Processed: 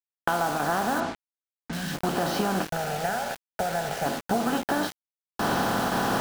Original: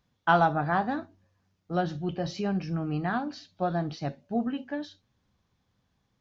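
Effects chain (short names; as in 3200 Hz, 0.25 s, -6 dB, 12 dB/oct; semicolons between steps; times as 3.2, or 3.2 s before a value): per-bin compression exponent 0.4; recorder AGC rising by 19 dB/s; dynamic EQ 150 Hz, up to -6 dB, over -39 dBFS, Q 2.6; compressor 10:1, threshold -23 dBFS, peak gain reduction 9.5 dB; thinning echo 0.693 s, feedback 65%, high-pass 200 Hz, level -12 dB; gate with hold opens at -17 dBFS; 1.68–1.94 spectral gain 280–1500 Hz -16 dB; 2.7–4.06 fixed phaser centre 1100 Hz, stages 6; requantised 6-bit, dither none; 1–1.73 air absorption 84 m; gain +1.5 dB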